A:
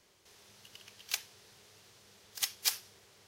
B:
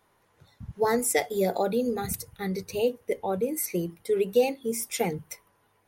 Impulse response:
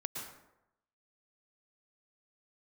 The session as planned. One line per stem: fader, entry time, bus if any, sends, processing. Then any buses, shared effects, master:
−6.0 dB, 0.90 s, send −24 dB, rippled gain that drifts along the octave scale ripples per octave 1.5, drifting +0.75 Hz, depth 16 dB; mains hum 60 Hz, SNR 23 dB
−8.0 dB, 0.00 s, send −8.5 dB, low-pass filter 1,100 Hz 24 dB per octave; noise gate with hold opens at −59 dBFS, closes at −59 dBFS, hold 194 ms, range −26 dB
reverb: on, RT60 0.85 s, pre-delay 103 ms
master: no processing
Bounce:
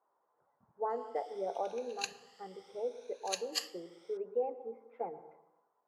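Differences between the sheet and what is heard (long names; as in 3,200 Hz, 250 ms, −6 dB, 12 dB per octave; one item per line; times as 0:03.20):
stem B: missing noise gate with hold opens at −59 dBFS, closes at −59 dBFS, hold 194 ms, range −26 dB
master: extra band-pass filter 620–6,500 Hz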